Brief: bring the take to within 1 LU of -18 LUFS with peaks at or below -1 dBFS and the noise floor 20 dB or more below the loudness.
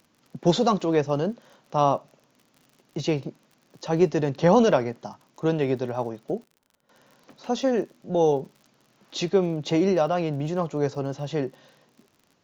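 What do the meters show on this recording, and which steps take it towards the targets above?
tick rate 49 per s; loudness -25.0 LUFS; peak level -6.0 dBFS; loudness target -18.0 LUFS
-> de-click; trim +7 dB; peak limiter -1 dBFS

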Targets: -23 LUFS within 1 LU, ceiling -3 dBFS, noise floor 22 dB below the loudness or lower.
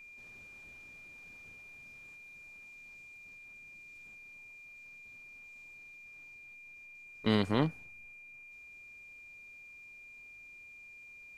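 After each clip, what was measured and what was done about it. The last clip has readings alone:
steady tone 2.4 kHz; tone level -50 dBFS; loudness -42.0 LUFS; peak level -13.5 dBFS; loudness target -23.0 LUFS
-> band-stop 2.4 kHz, Q 30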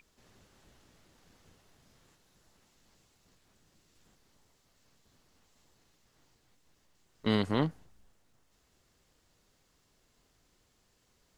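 steady tone not found; loudness -31.5 LUFS; peak level -13.5 dBFS; loudness target -23.0 LUFS
-> trim +8.5 dB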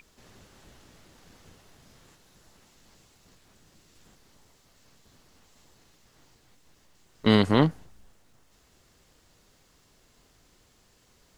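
loudness -23.0 LUFS; peak level -5.0 dBFS; noise floor -63 dBFS

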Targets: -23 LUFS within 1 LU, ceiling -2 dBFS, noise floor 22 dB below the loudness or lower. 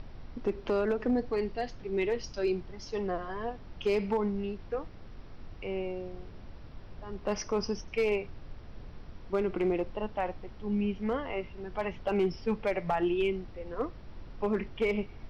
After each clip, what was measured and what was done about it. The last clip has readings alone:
clipped samples 0.5%; clipping level -21.5 dBFS; noise floor -48 dBFS; noise floor target -55 dBFS; loudness -33.0 LUFS; peak level -21.5 dBFS; loudness target -23.0 LUFS
-> clip repair -21.5 dBFS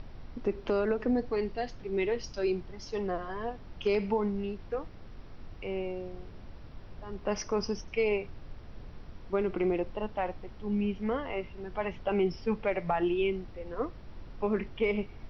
clipped samples 0.0%; noise floor -48 dBFS; noise floor target -55 dBFS
-> noise print and reduce 7 dB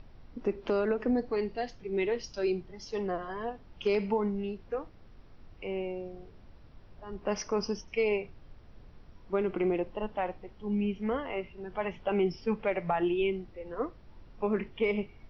noise floor -54 dBFS; noise floor target -55 dBFS
-> noise print and reduce 6 dB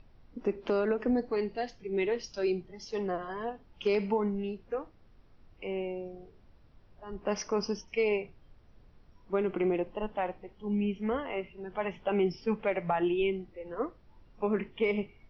noise floor -59 dBFS; loudness -32.5 LUFS; peak level -17.0 dBFS; loudness target -23.0 LUFS
-> trim +9.5 dB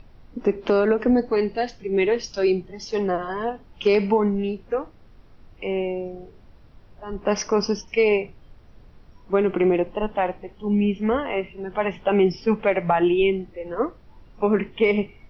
loudness -23.0 LUFS; peak level -7.5 dBFS; noise floor -50 dBFS

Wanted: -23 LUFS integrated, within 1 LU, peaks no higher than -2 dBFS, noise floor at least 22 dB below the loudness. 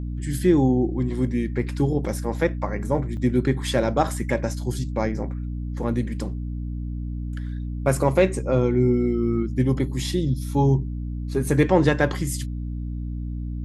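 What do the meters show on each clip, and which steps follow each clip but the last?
dropouts 1; longest dropout 1.2 ms; hum 60 Hz; highest harmonic 300 Hz; hum level -27 dBFS; loudness -24.0 LUFS; peak level -4.5 dBFS; loudness target -23.0 LUFS
-> interpolate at 3.17 s, 1.2 ms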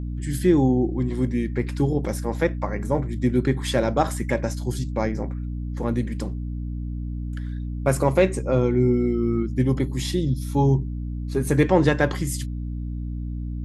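dropouts 0; hum 60 Hz; highest harmonic 300 Hz; hum level -27 dBFS
-> hum notches 60/120/180/240/300 Hz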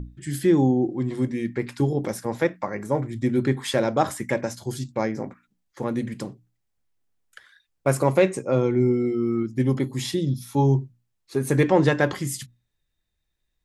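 hum not found; loudness -24.0 LUFS; peak level -5.5 dBFS; loudness target -23.0 LUFS
-> trim +1 dB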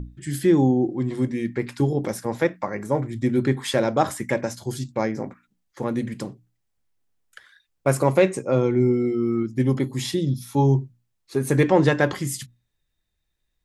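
loudness -23.0 LUFS; peak level -4.5 dBFS; noise floor -75 dBFS

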